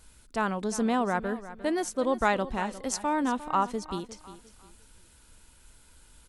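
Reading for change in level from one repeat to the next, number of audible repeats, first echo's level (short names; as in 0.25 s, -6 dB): -10.0 dB, 2, -15.0 dB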